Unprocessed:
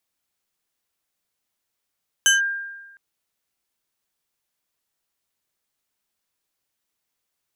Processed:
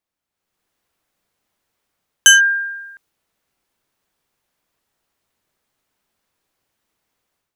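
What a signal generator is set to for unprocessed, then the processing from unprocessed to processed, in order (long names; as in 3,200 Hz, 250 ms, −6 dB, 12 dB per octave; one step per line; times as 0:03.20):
two-operator FM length 0.71 s, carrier 1,600 Hz, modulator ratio 2.89, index 1.6, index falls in 0.15 s linear, decay 1.17 s, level −11 dB
automatic gain control gain up to 12 dB
one half of a high-frequency compander decoder only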